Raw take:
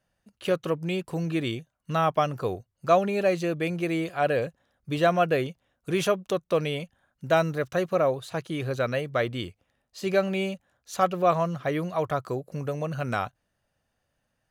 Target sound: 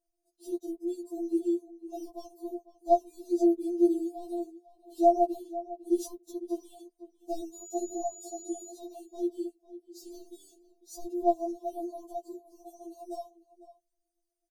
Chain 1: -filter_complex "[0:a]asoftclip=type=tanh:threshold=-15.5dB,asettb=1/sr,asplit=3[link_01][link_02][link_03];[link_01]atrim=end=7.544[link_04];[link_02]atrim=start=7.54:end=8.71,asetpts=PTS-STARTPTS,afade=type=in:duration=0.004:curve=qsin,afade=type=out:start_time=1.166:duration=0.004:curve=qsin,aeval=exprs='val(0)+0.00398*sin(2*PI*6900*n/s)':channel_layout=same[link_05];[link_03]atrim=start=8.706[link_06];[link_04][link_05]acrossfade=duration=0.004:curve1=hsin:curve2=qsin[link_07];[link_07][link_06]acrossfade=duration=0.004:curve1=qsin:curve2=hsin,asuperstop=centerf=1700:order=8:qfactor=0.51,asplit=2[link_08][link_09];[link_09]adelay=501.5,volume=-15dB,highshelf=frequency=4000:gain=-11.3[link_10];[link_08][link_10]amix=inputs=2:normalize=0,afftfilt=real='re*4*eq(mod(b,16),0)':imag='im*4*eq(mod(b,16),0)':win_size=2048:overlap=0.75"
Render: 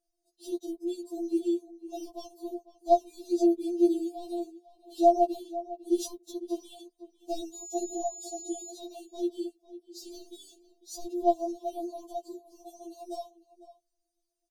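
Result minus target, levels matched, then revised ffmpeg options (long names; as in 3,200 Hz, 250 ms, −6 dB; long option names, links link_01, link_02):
4,000 Hz band +8.5 dB
-filter_complex "[0:a]asoftclip=type=tanh:threshold=-15.5dB,asettb=1/sr,asplit=3[link_01][link_02][link_03];[link_01]atrim=end=7.544[link_04];[link_02]atrim=start=7.54:end=8.71,asetpts=PTS-STARTPTS,afade=type=in:duration=0.004:curve=qsin,afade=type=out:start_time=1.166:duration=0.004:curve=qsin,aeval=exprs='val(0)+0.00398*sin(2*PI*6900*n/s)':channel_layout=same[link_05];[link_03]atrim=start=8.706[link_06];[link_04][link_05]acrossfade=duration=0.004:curve1=hsin:curve2=qsin[link_07];[link_07][link_06]acrossfade=duration=0.004:curve1=qsin:curve2=hsin,asuperstop=centerf=1700:order=8:qfactor=0.51,equalizer=frequency=3200:width=0.8:gain=-12,asplit=2[link_08][link_09];[link_09]adelay=501.5,volume=-15dB,highshelf=frequency=4000:gain=-11.3[link_10];[link_08][link_10]amix=inputs=2:normalize=0,afftfilt=real='re*4*eq(mod(b,16),0)':imag='im*4*eq(mod(b,16),0)':win_size=2048:overlap=0.75"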